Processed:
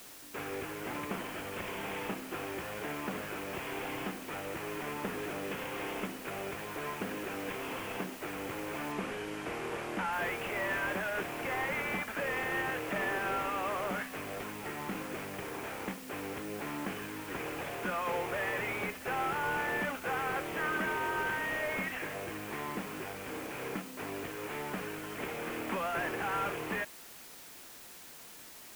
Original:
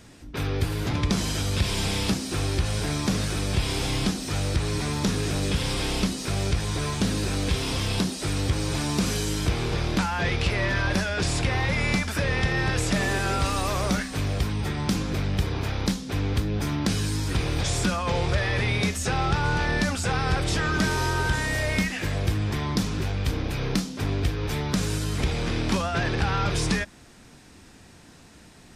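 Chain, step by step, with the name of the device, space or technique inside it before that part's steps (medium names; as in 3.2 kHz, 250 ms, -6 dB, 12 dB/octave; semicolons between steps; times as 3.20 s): army field radio (band-pass 360–3100 Hz; CVSD coder 16 kbps; white noise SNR 14 dB); 8.92–10.13 s: Bessel low-pass 9.8 kHz, order 8; trim -4.5 dB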